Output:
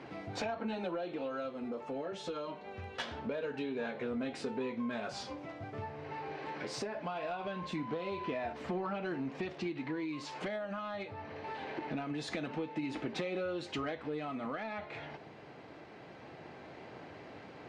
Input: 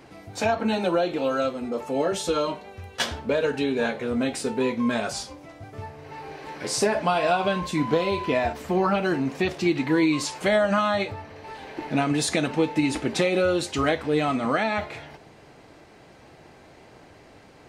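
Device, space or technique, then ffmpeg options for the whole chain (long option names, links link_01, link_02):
AM radio: -af "highpass=110,lowpass=3600,acompressor=threshold=-35dB:ratio=6,asoftclip=type=tanh:threshold=-26.5dB,tremolo=f=0.23:d=0.27,volume=1dB"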